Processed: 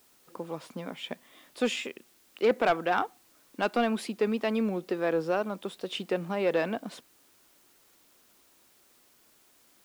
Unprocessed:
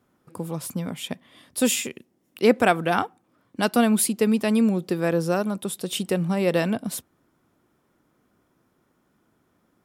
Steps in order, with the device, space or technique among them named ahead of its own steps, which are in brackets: tape answering machine (band-pass 320–3300 Hz; saturation -13.5 dBFS, distortion -15 dB; wow and flutter; white noise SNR 31 dB); trim -2 dB

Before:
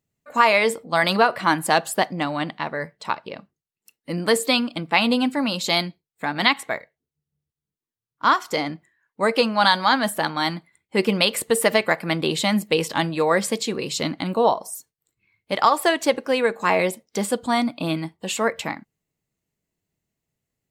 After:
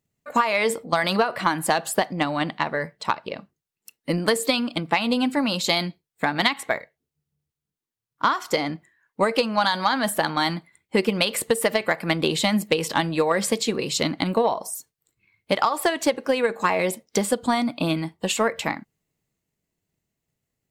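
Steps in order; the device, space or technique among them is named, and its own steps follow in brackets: drum-bus smash (transient shaper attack +7 dB, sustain +3 dB; compression, threshold -16 dBFS, peak gain reduction 11 dB; saturation -6 dBFS, distortion -24 dB)

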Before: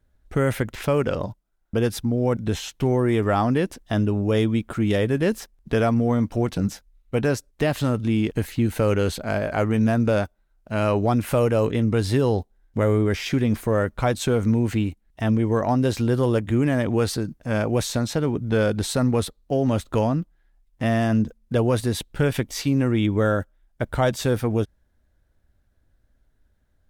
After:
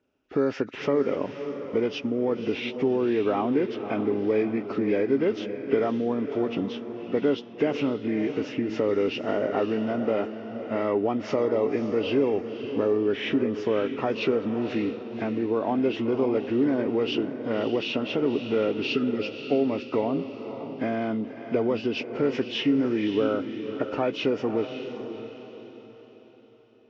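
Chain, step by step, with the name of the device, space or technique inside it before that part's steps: hearing aid with frequency lowering (knee-point frequency compression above 1.2 kHz 1.5:1; compression 3:1, threshold -24 dBFS, peak gain reduction 7 dB; cabinet simulation 250–5300 Hz, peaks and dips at 280 Hz +8 dB, 410 Hz +7 dB, 1.6 kHz -3 dB, 2.8 kHz +8 dB, 4.3 kHz -9 dB); spectral replace 18.80–19.26 s, 460–1200 Hz; echo that smears into a reverb 559 ms, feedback 41%, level -9 dB

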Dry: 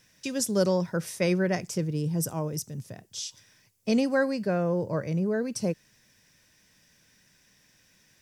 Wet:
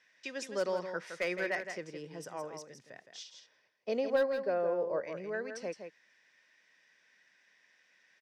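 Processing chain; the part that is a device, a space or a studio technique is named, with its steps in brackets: megaphone (band-pass 490–3800 Hz; peaking EQ 1.9 kHz +7.5 dB 0.53 oct; hard clipper -20.5 dBFS, distortion -18 dB); 3.23–5.04 s: graphic EQ 500/2000/8000 Hz +6/-8/-8 dB; delay 165 ms -8 dB; trim -5 dB

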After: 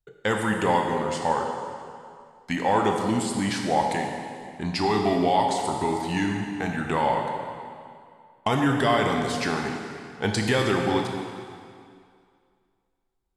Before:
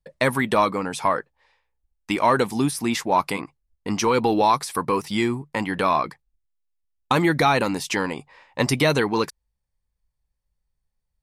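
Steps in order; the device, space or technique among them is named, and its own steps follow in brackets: slowed and reverbed (tape speed -16%; reverberation RT60 2.2 s, pre-delay 19 ms, DRR 2 dB); trim -4.5 dB

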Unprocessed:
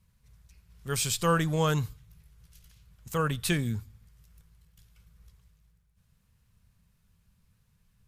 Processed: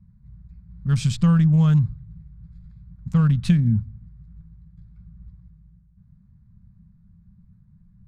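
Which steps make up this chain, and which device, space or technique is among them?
local Wiener filter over 15 samples; jukebox (low-pass 5.4 kHz 12 dB/octave; resonant low shelf 270 Hz +12 dB, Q 3; compression 5:1, threshold -14 dBFS, peak gain reduction 7 dB)

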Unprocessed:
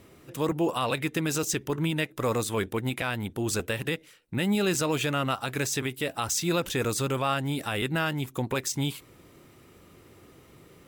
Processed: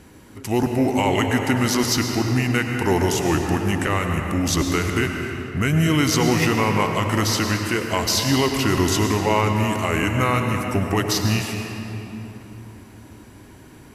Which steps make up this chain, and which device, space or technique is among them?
slowed and reverbed (tape speed -22%; reverberation RT60 3.5 s, pre-delay 94 ms, DRR 3 dB); trim +6.5 dB

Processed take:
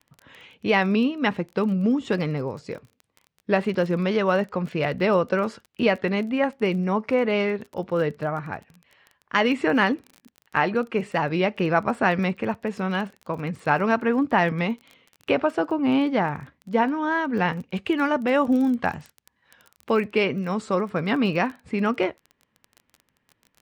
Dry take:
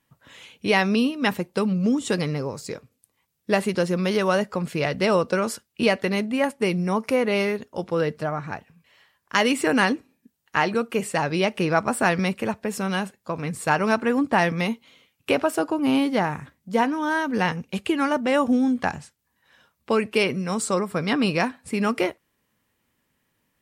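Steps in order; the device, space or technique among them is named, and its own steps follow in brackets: lo-fi chain (low-pass 3 kHz 12 dB/octave; wow and flutter; crackle 21 per s -34 dBFS); 17.76–20.08 s: treble shelf 6 kHz +8 dB

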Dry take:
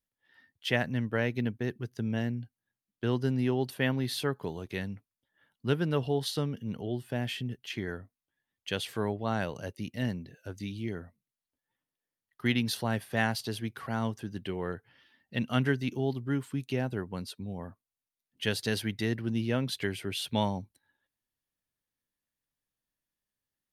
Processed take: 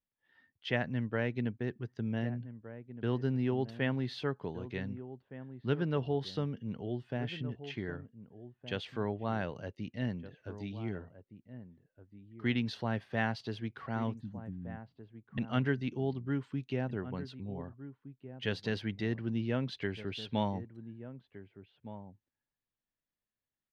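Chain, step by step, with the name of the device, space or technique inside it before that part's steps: 14.15–15.38 s: Chebyshev band-stop 270–6600 Hz, order 5; shout across a valley (distance through air 190 m; echo from a far wall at 260 m, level -13 dB); trim -3 dB

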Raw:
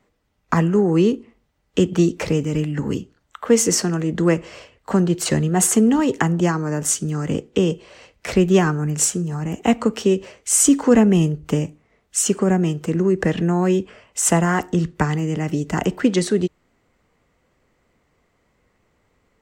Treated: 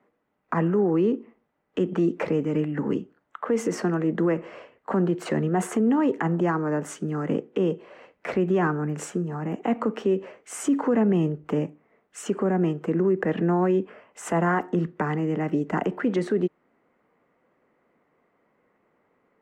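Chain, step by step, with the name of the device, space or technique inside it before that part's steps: DJ mixer with the lows and highs turned down (three-band isolator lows -24 dB, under 170 Hz, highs -21 dB, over 2.2 kHz; peak limiter -14.5 dBFS, peak gain reduction 9.5 dB)

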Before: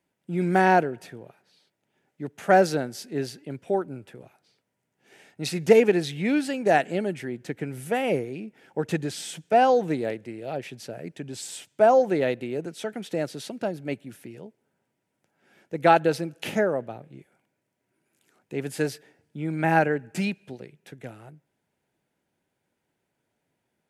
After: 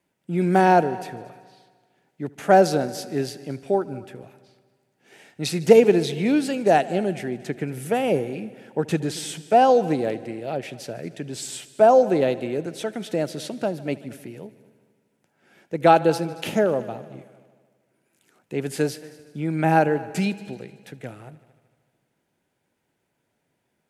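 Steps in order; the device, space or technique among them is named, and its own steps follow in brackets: dynamic bell 1.9 kHz, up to -7 dB, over -41 dBFS, Q 1.7; multi-head tape echo (multi-head delay 76 ms, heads all three, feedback 50%, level -22.5 dB; wow and flutter 23 cents); trim +3.5 dB

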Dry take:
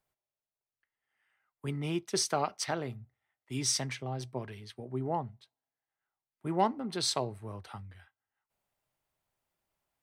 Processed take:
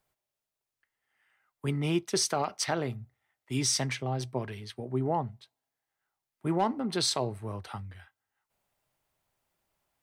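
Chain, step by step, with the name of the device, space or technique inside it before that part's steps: clipper into limiter (hard clipper -17 dBFS, distortion -29 dB; peak limiter -22.5 dBFS, peak gain reduction 5.5 dB); trim +5 dB

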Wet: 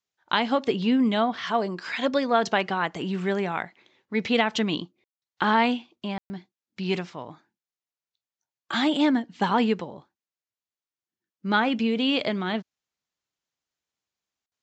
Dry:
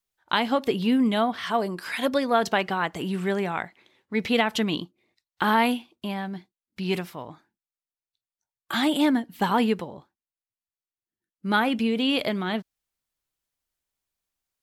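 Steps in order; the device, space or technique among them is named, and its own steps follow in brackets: call with lost packets (high-pass 100 Hz; resampled via 16 kHz; lost packets of 60 ms bursts)

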